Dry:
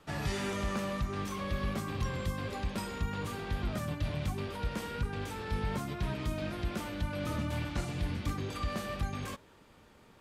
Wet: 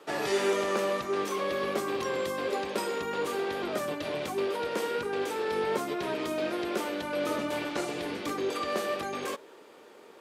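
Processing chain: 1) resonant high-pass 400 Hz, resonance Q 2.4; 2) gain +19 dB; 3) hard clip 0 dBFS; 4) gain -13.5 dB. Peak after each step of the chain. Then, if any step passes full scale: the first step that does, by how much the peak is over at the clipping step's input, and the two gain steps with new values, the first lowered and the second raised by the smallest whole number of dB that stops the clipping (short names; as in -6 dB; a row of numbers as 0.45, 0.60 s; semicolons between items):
-21.5, -2.5, -2.5, -16.0 dBFS; no overload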